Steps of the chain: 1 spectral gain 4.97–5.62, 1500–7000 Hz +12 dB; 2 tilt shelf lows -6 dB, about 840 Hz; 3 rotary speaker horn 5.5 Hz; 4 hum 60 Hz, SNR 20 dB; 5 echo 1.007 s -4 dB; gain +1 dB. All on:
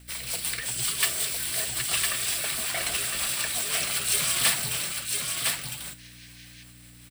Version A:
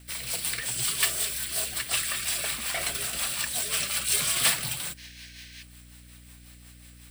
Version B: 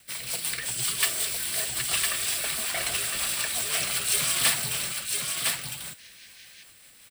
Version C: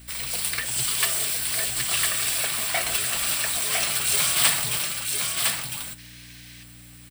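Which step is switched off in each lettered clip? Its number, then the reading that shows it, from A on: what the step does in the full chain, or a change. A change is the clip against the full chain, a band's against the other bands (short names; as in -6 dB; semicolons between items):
5, momentary loudness spread change +9 LU; 4, 125 Hz band -1.5 dB; 3, 1 kHz band +1.5 dB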